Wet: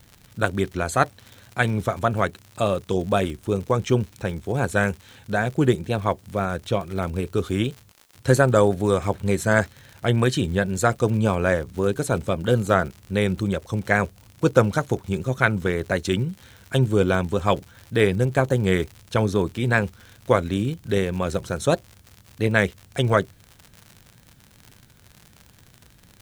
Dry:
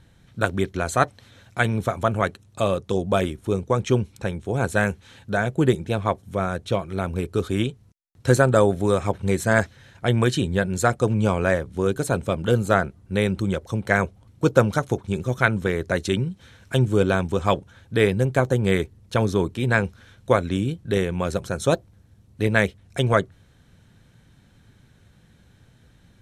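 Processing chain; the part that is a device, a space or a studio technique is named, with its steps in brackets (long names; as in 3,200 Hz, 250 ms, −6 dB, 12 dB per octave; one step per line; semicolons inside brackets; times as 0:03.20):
vinyl LP (tape wow and flutter; surface crackle 92 per second −32 dBFS; white noise bed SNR 41 dB)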